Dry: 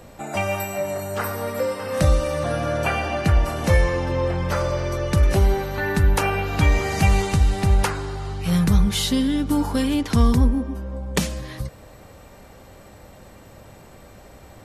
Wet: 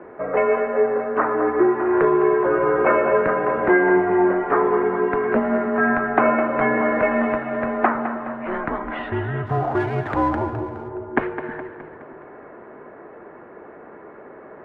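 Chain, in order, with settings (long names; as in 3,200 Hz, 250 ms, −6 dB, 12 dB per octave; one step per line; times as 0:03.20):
echo with a time of its own for lows and highs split 430 Hz, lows 313 ms, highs 209 ms, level −10.5 dB
single-sideband voice off tune −160 Hz 420–2,000 Hz
0:09.46–0:10.89: windowed peak hold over 3 samples
level +8 dB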